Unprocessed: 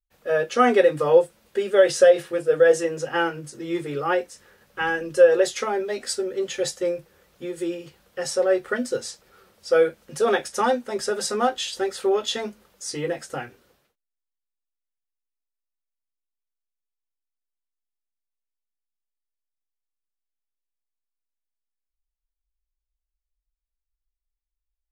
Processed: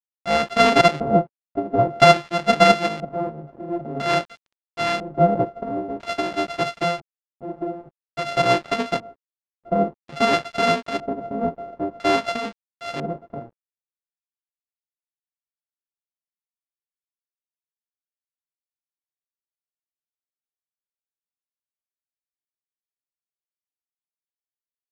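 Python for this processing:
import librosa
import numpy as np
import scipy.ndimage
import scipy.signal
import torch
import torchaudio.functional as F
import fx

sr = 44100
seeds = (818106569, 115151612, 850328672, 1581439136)

y = np.r_[np.sort(x[:len(x) // 64 * 64].reshape(-1, 64), axis=1).ravel(), x[len(x) // 64 * 64:]]
y = np.where(np.abs(y) >= 10.0 ** (-43.5 / 20.0), y, 0.0)
y = fx.filter_lfo_lowpass(y, sr, shape='square', hz=0.5, low_hz=550.0, high_hz=4200.0, q=0.85)
y = y * librosa.db_to_amplitude(2.0)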